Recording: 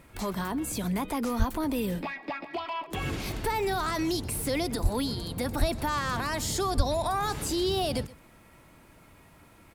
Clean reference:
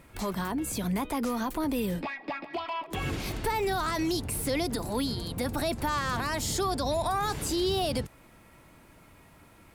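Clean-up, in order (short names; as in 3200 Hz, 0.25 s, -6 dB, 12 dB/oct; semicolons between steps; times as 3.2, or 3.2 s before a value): de-click; de-plosive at 1.38/4.82/5.59/6.76; inverse comb 0.125 s -20 dB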